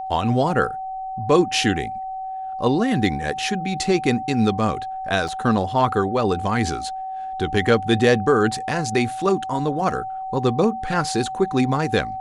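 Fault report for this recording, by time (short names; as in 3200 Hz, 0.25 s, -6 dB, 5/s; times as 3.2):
tone 760 Hz -27 dBFS
5.28–5.29 gap 5 ms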